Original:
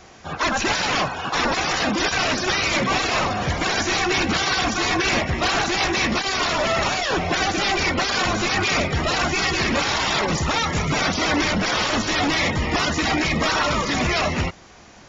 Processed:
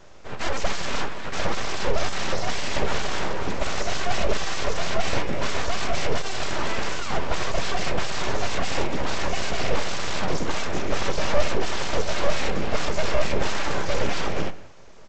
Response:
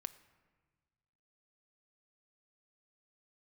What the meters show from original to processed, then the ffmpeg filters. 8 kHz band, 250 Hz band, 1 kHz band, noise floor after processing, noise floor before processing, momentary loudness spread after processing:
no reading, -8.5 dB, -6.5 dB, -34 dBFS, -46 dBFS, 3 LU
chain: -filter_complex "[0:a]equalizer=f=280:t=o:w=1.6:g=14,aresample=16000,aeval=exprs='abs(val(0))':c=same,aresample=44100,asplit=2[s0][s1];[s1]adelay=180,highpass=300,lowpass=3400,asoftclip=type=hard:threshold=0.112,volume=0.1[s2];[s0][s2]amix=inputs=2:normalize=0[s3];[1:a]atrim=start_sample=2205,afade=t=out:st=0.31:d=0.01,atrim=end_sample=14112[s4];[s3][s4]afir=irnorm=-1:irlink=0,volume=0.631"

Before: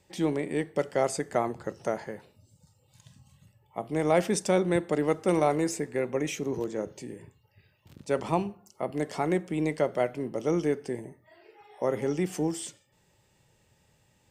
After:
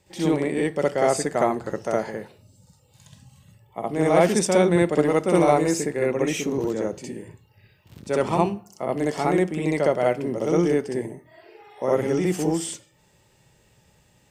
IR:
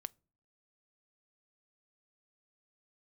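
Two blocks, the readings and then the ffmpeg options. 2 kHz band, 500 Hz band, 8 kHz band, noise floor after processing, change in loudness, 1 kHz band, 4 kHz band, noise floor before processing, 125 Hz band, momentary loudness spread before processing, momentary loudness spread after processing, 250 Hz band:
+6.5 dB, +6.5 dB, +6.5 dB, -61 dBFS, +6.5 dB, +6.5 dB, +6.5 dB, -67 dBFS, +6.5 dB, 13 LU, 12 LU, +6.5 dB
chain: -filter_complex "[0:a]asplit=2[s0][s1];[1:a]atrim=start_sample=2205,adelay=63[s2];[s1][s2]afir=irnorm=-1:irlink=0,volume=2.24[s3];[s0][s3]amix=inputs=2:normalize=0,volume=1.19"

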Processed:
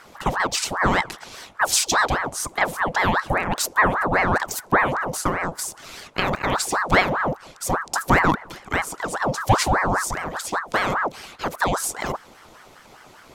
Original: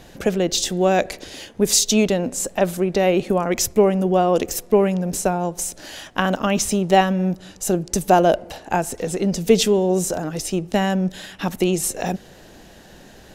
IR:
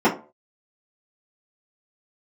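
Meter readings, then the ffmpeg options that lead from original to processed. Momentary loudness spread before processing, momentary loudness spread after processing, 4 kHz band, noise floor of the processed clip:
11 LU, 11 LU, -2.0 dB, -49 dBFS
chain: -af "aeval=exprs='val(0)*sin(2*PI*910*n/s+910*0.65/5*sin(2*PI*5*n/s))':c=same"

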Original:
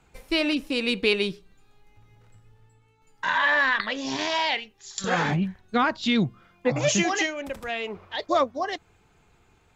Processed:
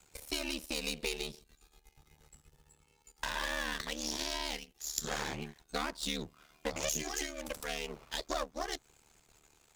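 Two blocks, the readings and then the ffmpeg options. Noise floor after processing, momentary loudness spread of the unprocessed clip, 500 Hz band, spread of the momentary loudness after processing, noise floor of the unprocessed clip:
-70 dBFS, 10 LU, -13.5 dB, 6 LU, -62 dBFS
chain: -filter_complex "[0:a]aeval=exprs='if(lt(val(0),0),0.251*val(0),val(0))':c=same,bass=f=250:g=-4,treble=f=4000:g=15,acrossover=split=230|490[s0][s1][s2];[s0]acompressor=threshold=0.00631:ratio=4[s3];[s1]acompressor=threshold=0.00794:ratio=4[s4];[s2]acompressor=threshold=0.0224:ratio=4[s5];[s3][s4][s5]amix=inputs=3:normalize=0,aeval=exprs='val(0)*sin(2*PI*37*n/s)':c=same"

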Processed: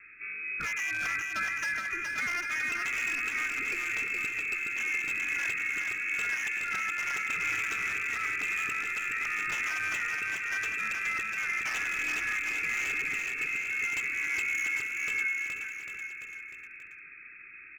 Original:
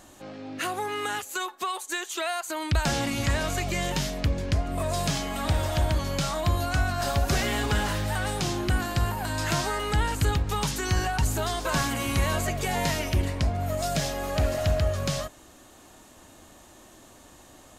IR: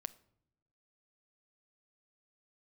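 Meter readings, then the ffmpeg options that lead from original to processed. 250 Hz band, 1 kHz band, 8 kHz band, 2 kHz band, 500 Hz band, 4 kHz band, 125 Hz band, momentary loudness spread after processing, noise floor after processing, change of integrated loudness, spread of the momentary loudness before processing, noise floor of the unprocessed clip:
-19.5 dB, -9.5 dB, -7.5 dB, +6.0 dB, -22.0 dB, -11.0 dB, -30.0 dB, 8 LU, -49 dBFS, -2.5 dB, 5 LU, -52 dBFS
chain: -filter_complex "[0:a]asplit=2[s0][s1];[s1]adelay=98,lowpass=f=980:p=1,volume=0.447,asplit=2[s2][s3];[s3]adelay=98,lowpass=f=980:p=1,volume=0.33,asplit=2[s4][s5];[s5]adelay=98,lowpass=f=980:p=1,volume=0.33,asplit=2[s6][s7];[s7]adelay=98,lowpass=f=980:p=1,volume=0.33[s8];[s2][s4][s6][s8]amix=inputs=4:normalize=0[s9];[s0][s9]amix=inputs=2:normalize=0,acompressor=threshold=0.0316:ratio=2.5,highpass=f=160:w=0.5412,highpass=f=160:w=1.3066,lowpass=f=2400:t=q:w=0.5098,lowpass=f=2400:t=q:w=0.6013,lowpass=f=2400:t=q:w=0.9,lowpass=f=2400:t=q:w=2.563,afreqshift=-2800,asuperstop=centerf=760:order=20:qfactor=1,aeval=exprs='0.0335*(abs(mod(val(0)/0.0335+3,4)-2)-1)':c=same,asplit=2[s10][s11];[s11]aecho=0:1:420|798|1138|1444|1720:0.631|0.398|0.251|0.158|0.1[s12];[s10][s12]amix=inputs=2:normalize=0,volume=1.26"

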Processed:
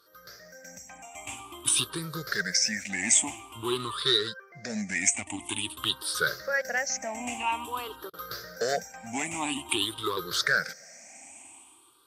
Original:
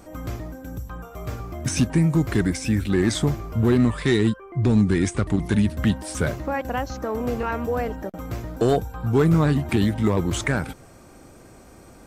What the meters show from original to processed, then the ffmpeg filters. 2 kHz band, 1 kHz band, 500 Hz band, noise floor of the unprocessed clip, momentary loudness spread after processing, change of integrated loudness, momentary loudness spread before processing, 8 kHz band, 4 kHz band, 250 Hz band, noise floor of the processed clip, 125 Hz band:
+2.0 dB, -3.5 dB, -10.0 dB, -48 dBFS, 20 LU, -5.5 dB, 14 LU, +8.0 dB, +7.0 dB, -16.5 dB, -55 dBFS, -22.5 dB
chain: -af "afftfilt=real='re*pow(10,22/40*sin(2*PI*(0.61*log(max(b,1)*sr/1024/100)/log(2)-(0.49)*(pts-256)/sr)))':imag='im*pow(10,22/40*sin(2*PI*(0.61*log(max(b,1)*sr/1024/100)/log(2)-(0.49)*(pts-256)/sr)))':win_size=1024:overlap=0.75,bandpass=f=5700:t=q:w=0.59:csg=0,bandreject=f=4100:w=25,dynaudnorm=f=130:g=9:m=3.98,adynamicequalizer=threshold=0.01:dfrequency=8700:dqfactor=2.5:tfrequency=8700:tqfactor=2.5:attack=5:release=100:ratio=0.375:range=1.5:mode=boostabove:tftype=bell,volume=0.398"

